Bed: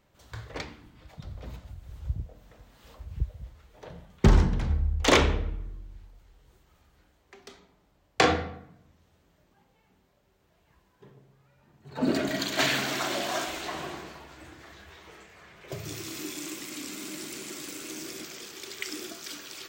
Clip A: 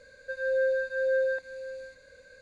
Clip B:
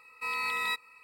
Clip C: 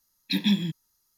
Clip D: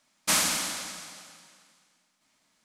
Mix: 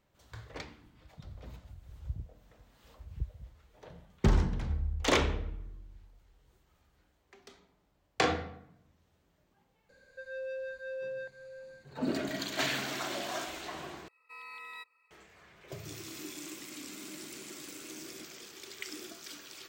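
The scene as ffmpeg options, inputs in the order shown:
ffmpeg -i bed.wav -i cue0.wav -i cue1.wav -filter_complex "[0:a]volume=-6.5dB[link_01];[1:a]asoftclip=type=tanh:threshold=-27dB[link_02];[2:a]bass=frequency=250:gain=-13,treble=frequency=4000:gain=-6[link_03];[link_01]asplit=2[link_04][link_05];[link_04]atrim=end=14.084[link_06];[link_03]atrim=end=1.03,asetpts=PTS-STARTPTS,volume=-14dB[link_07];[link_05]atrim=start=15.106[link_08];[link_02]atrim=end=2.41,asetpts=PTS-STARTPTS,volume=-8.5dB,afade=type=in:duration=0.004:curve=hsin,afade=type=out:start_time=2.406:duration=0.004:curve=hsin,adelay=9890[link_09];[link_06][link_07]acrossfade=duration=0.004:curve1=hsin:curve2=hsin[link_10];[link_10][link_08]acrossfade=duration=0.004:curve1=hsin:curve2=hsin[link_11];[link_11][link_09]amix=inputs=2:normalize=0" out.wav

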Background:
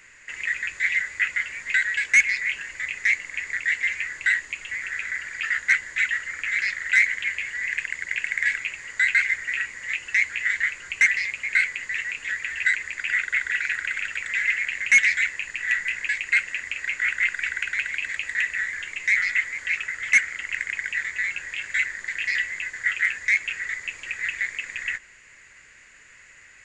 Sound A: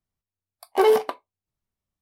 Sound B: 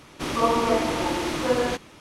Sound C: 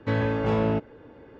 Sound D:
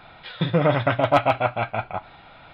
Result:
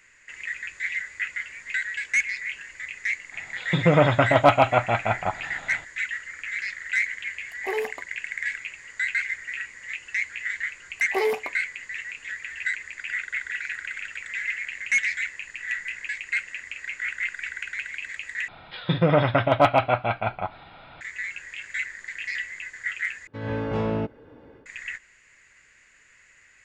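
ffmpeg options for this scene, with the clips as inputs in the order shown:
ffmpeg -i bed.wav -i cue0.wav -i cue1.wav -i cue2.wav -i cue3.wav -filter_complex "[4:a]asplit=2[link_01][link_02];[1:a]asplit=2[link_03][link_04];[0:a]volume=-6dB[link_05];[link_01]dynaudnorm=framelen=270:gausssize=3:maxgain=11.5dB[link_06];[3:a]dynaudnorm=framelen=130:gausssize=3:maxgain=12.5dB[link_07];[link_05]asplit=3[link_08][link_09][link_10];[link_08]atrim=end=18.484[link_11];[link_02]atrim=end=2.53[link_12];[link_09]atrim=start=21.006:end=23.274[link_13];[link_07]atrim=end=1.39,asetpts=PTS-STARTPTS,volume=-13dB[link_14];[link_10]atrim=start=24.656[link_15];[link_06]atrim=end=2.53,asetpts=PTS-STARTPTS,volume=-4.5dB,afade=type=in:duration=0.004:curve=hsin,afade=type=out:start_time=2.526:duration=0.004:curve=hsin,adelay=3320[link_16];[link_03]atrim=end=2.01,asetpts=PTS-STARTPTS,volume=-11.5dB,afade=type=in:duration=0.004:curve=hsin,afade=type=out:start_time=2.006:duration=0.004:curve=hsin,adelay=6890[link_17];[link_04]atrim=end=2.01,asetpts=PTS-STARTPTS,volume=-7dB,afade=type=in:duration=0.004:curve=hsin,afade=type=out:start_time=2.006:duration=0.004:curve=hsin,adelay=10370[link_18];[link_11][link_12]acrossfade=duration=0.004:curve1=hsin:curve2=hsin[link_19];[link_19][link_13]acrossfade=duration=0.004:curve1=hsin:curve2=hsin[link_20];[link_20][link_14]acrossfade=duration=0.004:curve1=hsin:curve2=hsin[link_21];[link_21][link_15]acrossfade=duration=0.004:curve1=hsin:curve2=hsin[link_22];[link_22][link_16][link_17][link_18]amix=inputs=4:normalize=0" out.wav

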